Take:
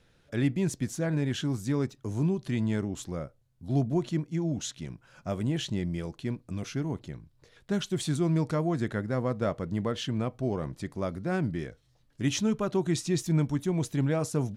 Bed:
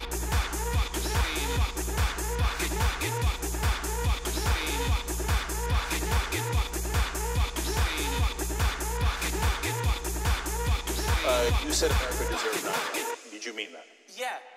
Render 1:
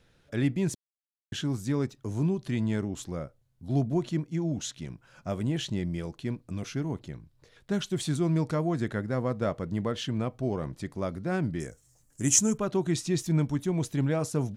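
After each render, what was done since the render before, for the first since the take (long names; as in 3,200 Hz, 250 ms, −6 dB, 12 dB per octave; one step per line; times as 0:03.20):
0:00.75–0:01.32: silence
0:11.60–0:12.58: high shelf with overshoot 5,300 Hz +12.5 dB, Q 3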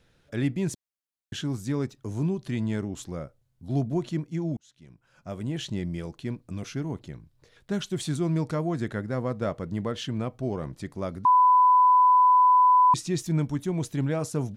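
0:04.57–0:05.76: fade in
0:11.25–0:12.94: beep over 1,000 Hz −14.5 dBFS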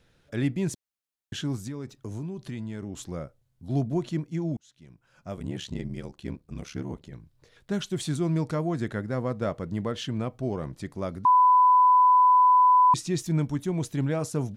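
0:01.59–0:02.98: downward compressor, threshold −31 dBFS
0:05.36–0:07.12: ring modulation 35 Hz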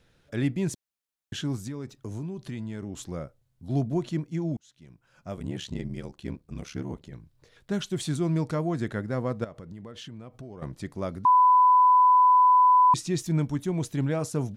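0:09.44–0:10.62: downward compressor 10 to 1, threshold −38 dBFS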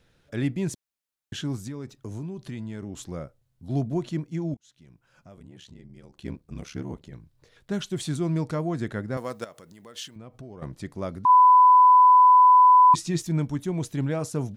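0:04.54–0:06.17: downward compressor 3 to 1, threshold −48 dBFS
0:09.17–0:10.16: RIAA equalisation recording
0:11.28–0:13.22: double-tracking delay 12 ms −6 dB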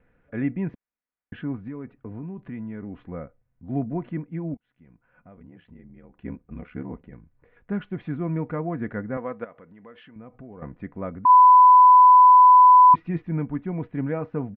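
Butterworth low-pass 2,300 Hz 36 dB per octave
comb filter 4.1 ms, depth 39%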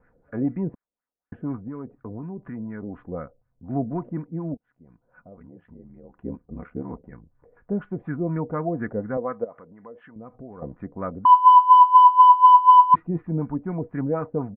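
soft clipping −13 dBFS, distortion −15 dB
auto-filter low-pass sine 4.1 Hz 490–1,600 Hz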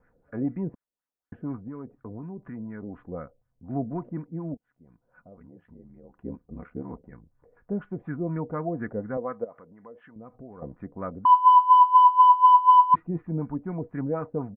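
level −3.5 dB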